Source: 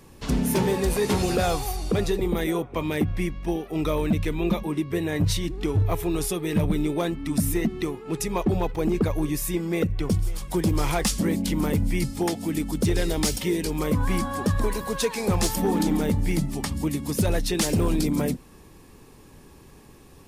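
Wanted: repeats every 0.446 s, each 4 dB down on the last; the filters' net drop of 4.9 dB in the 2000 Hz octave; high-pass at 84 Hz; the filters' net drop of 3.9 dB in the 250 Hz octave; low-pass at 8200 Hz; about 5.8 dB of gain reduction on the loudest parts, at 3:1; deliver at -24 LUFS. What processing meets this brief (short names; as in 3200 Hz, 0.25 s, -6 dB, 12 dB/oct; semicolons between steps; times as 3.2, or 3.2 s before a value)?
HPF 84 Hz; LPF 8200 Hz; bell 250 Hz -5.5 dB; bell 2000 Hz -6 dB; compressor 3:1, threshold -29 dBFS; feedback echo 0.446 s, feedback 63%, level -4 dB; gain +7 dB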